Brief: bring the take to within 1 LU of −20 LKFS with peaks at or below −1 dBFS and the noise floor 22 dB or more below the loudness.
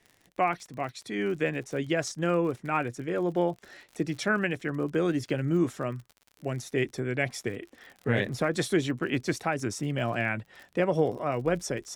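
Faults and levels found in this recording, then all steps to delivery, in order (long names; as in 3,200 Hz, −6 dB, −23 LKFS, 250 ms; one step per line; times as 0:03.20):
crackle rate 50 per second; integrated loudness −29.5 LKFS; sample peak −13.5 dBFS; target loudness −20.0 LKFS
→ click removal
level +9.5 dB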